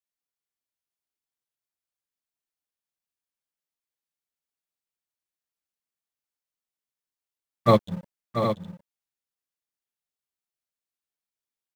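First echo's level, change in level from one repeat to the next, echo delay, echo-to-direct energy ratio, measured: -9.0 dB, no regular repeats, 685 ms, -5.5 dB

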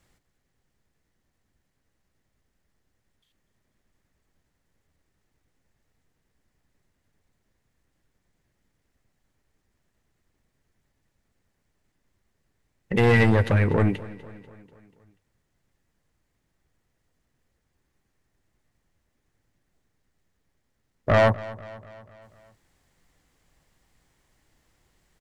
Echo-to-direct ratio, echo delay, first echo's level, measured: -17.0 dB, 244 ms, -18.5 dB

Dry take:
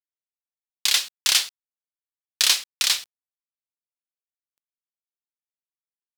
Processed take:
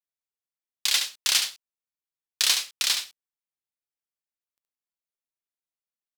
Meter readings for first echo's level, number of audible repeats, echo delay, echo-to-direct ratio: -7.0 dB, 1, 71 ms, -7.0 dB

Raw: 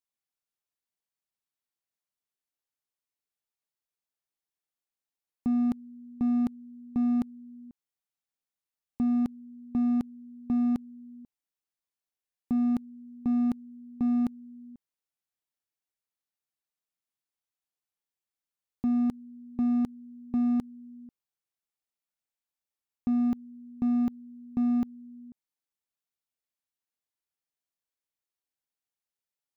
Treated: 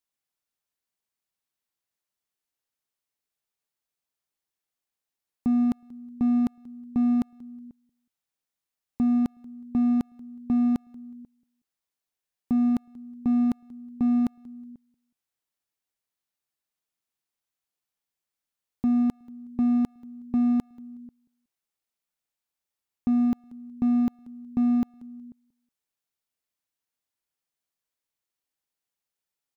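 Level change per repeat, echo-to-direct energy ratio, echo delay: -11.5 dB, -22.5 dB, 184 ms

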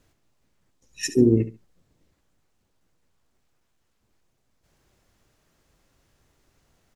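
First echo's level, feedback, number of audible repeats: -13.5 dB, 20%, 2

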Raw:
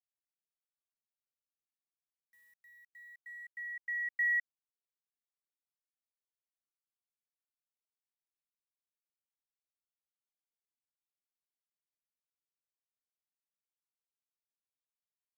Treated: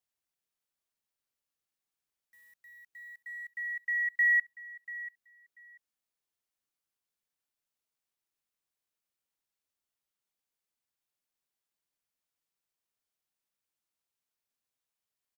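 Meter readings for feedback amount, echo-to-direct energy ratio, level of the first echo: 18%, -16.0 dB, -16.0 dB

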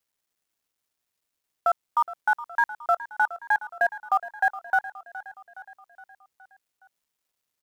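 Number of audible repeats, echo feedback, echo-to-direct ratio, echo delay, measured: 4, 56%, -14.0 dB, 417 ms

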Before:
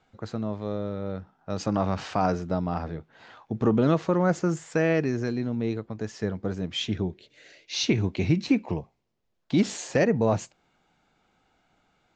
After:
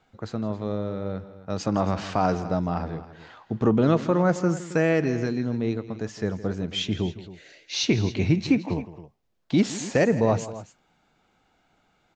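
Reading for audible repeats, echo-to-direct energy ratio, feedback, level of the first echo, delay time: 2, -13.0 dB, no regular repeats, -16.0 dB, 164 ms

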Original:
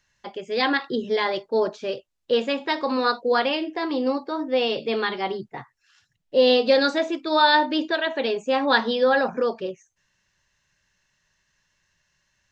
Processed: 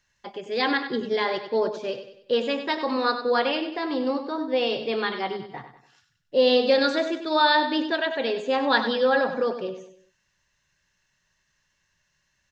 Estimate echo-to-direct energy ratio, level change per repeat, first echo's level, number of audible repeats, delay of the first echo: -9.0 dB, -7.5 dB, -10.0 dB, 4, 96 ms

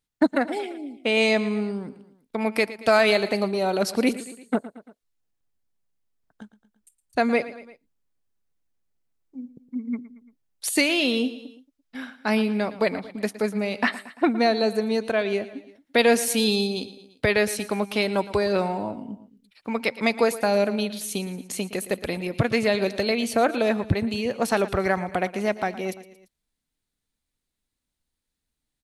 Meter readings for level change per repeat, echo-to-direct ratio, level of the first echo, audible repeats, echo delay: -5.0 dB, -14.5 dB, -16.0 dB, 3, 114 ms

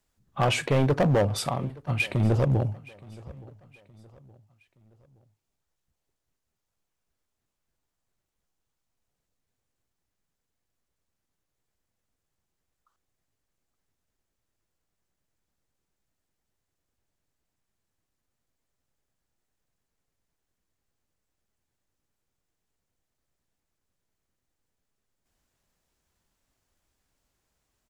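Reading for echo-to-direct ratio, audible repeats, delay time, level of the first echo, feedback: -21.5 dB, 2, 870 ms, -22.5 dB, 42%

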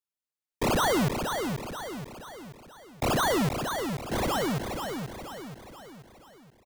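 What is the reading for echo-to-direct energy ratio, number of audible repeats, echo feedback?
-5.0 dB, 5, 47%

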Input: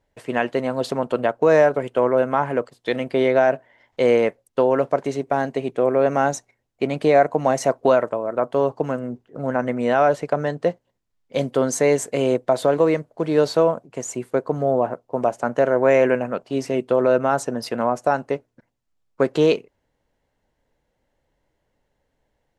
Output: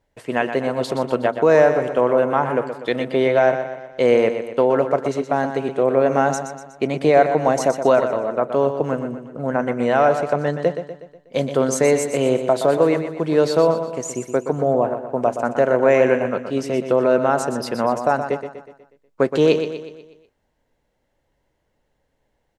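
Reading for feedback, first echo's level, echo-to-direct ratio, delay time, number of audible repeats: 49%, -9.0 dB, -8.0 dB, 122 ms, 5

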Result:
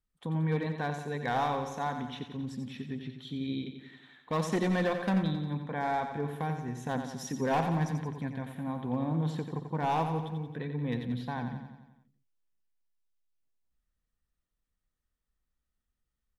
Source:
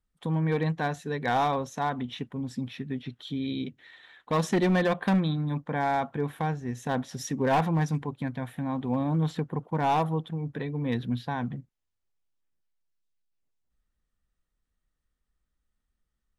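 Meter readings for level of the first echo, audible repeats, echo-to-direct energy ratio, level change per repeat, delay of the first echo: -8.0 dB, 6, -6.5 dB, -5.0 dB, 89 ms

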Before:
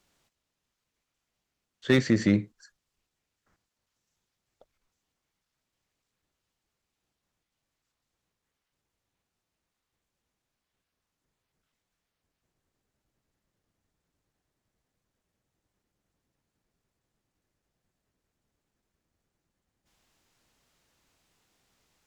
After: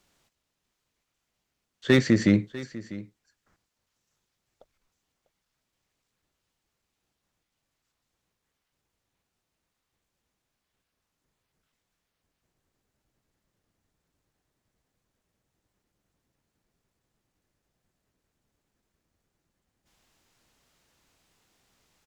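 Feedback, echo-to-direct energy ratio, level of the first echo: no regular repeats, -17.5 dB, -17.5 dB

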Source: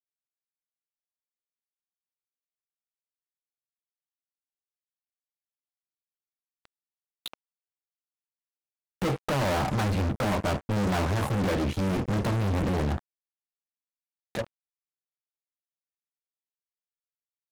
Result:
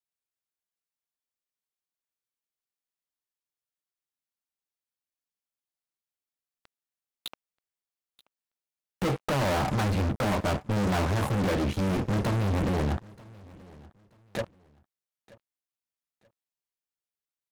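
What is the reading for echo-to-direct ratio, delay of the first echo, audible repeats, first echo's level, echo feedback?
-22.5 dB, 931 ms, 2, -23.0 dB, 27%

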